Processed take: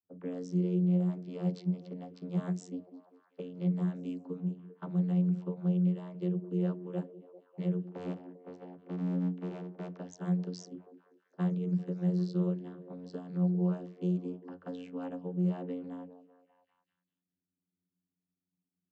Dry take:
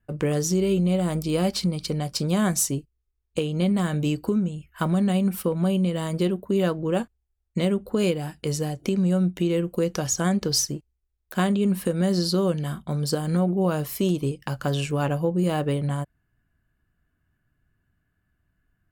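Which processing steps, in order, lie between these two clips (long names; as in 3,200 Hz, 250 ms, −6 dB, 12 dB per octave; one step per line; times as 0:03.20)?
0:07.82–0:09.99: sub-harmonics by changed cycles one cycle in 2, muted
low-pass that shuts in the quiet parts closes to 470 Hz, open at −19.5 dBFS
channel vocoder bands 32, saw 89.7 Hz
echo through a band-pass that steps 197 ms, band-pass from 300 Hz, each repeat 0.7 octaves, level −10.5 dB
level −8.5 dB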